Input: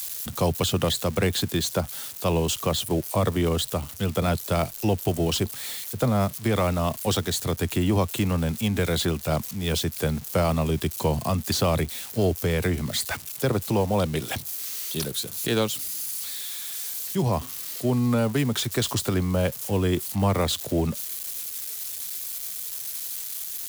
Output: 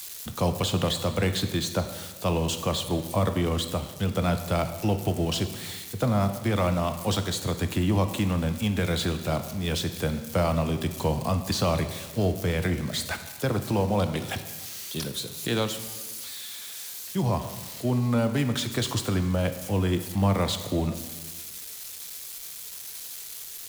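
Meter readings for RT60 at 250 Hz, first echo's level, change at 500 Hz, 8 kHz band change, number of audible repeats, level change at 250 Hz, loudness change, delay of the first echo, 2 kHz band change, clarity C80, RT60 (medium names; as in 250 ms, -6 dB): 1.4 s, no echo, -2.5 dB, -4.5 dB, no echo, -1.0 dB, -2.0 dB, no echo, -1.5 dB, 11.0 dB, 1.4 s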